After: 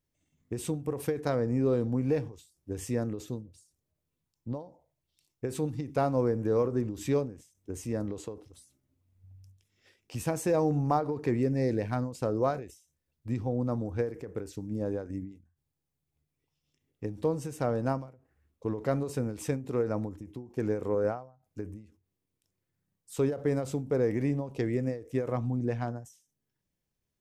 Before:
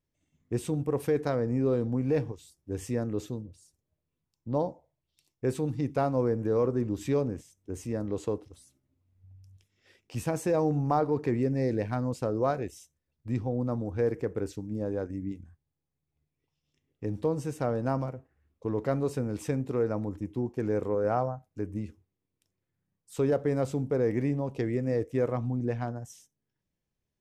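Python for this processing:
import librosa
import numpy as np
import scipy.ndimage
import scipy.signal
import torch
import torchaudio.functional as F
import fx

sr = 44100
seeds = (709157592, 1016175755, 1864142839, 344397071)

y = fx.high_shelf(x, sr, hz=5600.0, db=4.5)
y = fx.end_taper(y, sr, db_per_s=130.0)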